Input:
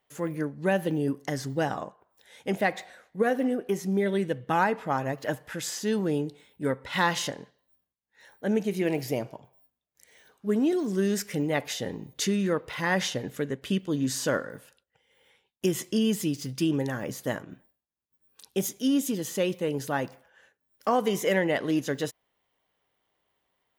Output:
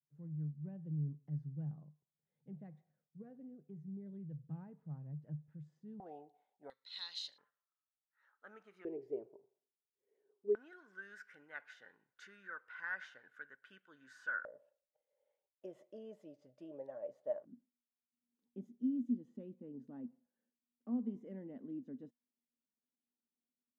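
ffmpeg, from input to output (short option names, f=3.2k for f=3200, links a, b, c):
-af "asetnsamples=n=441:p=0,asendcmd='6 bandpass f 740;6.7 bandpass f 4100;7.38 bandpass f 1300;8.85 bandpass f 400;10.55 bandpass f 1500;14.45 bandpass f 600;17.45 bandpass f 240',bandpass=f=150:t=q:w=16:csg=0"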